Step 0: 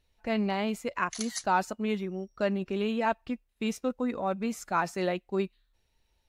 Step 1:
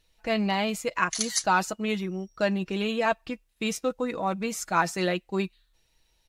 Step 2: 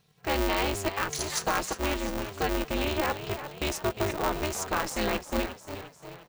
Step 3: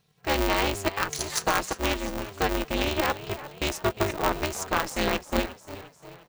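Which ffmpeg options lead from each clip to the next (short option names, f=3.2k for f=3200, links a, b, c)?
-af "equalizer=f=7.3k:w=0.3:g=6.5,aecho=1:1:6.2:0.42,volume=2dB"
-filter_complex "[0:a]alimiter=limit=-18dB:level=0:latency=1:release=121,asplit=2[a][b];[b]asplit=6[c][d][e][f][g][h];[c]adelay=353,afreqshift=46,volume=-11dB[i];[d]adelay=706,afreqshift=92,volume=-16.7dB[j];[e]adelay=1059,afreqshift=138,volume=-22.4dB[k];[f]adelay=1412,afreqshift=184,volume=-28dB[l];[g]adelay=1765,afreqshift=230,volume=-33.7dB[m];[h]adelay=2118,afreqshift=276,volume=-39.4dB[n];[i][j][k][l][m][n]amix=inputs=6:normalize=0[o];[a][o]amix=inputs=2:normalize=0,aeval=exprs='val(0)*sgn(sin(2*PI*150*n/s))':c=same"
-af "aeval=exprs='0.168*(cos(1*acos(clip(val(0)/0.168,-1,1)))-cos(1*PI/2))+0.0376*(cos(3*acos(clip(val(0)/0.168,-1,1)))-cos(3*PI/2))':c=same,volume=8dB"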